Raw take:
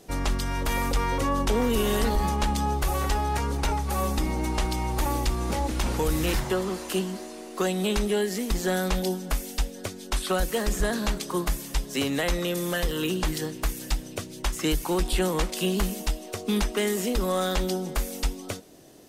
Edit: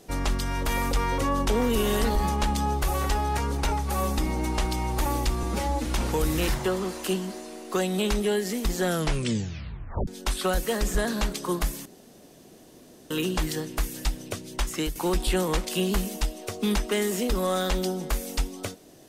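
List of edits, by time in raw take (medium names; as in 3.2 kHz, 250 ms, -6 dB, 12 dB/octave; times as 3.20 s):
5.43–5.72 s: stretch 1.5×
8.70 s: tape stop 1.23 s
11.71–12.96 s: room tone
14.55–14.81 s: fade out, to -8.5 dB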